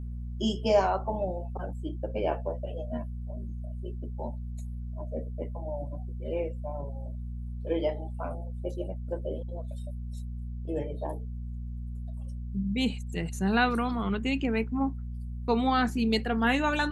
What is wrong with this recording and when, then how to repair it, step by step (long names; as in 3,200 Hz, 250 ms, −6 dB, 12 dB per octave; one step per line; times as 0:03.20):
mains hum 60 Hz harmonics 4 −36 dBFS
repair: hum removal 60 Hz, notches 4